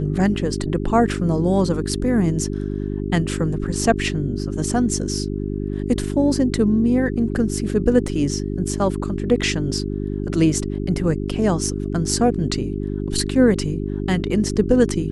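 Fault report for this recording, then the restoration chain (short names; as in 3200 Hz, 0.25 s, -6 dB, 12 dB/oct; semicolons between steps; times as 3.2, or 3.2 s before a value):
hum 50 Hz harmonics 8 -25 dBFS
8.08 gap 2.7 ms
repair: de-hum 50 Hz, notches 8; interpolate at 8.08, 2.7 ms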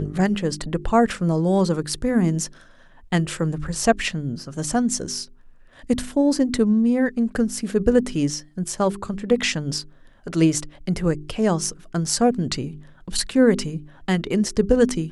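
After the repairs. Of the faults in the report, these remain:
none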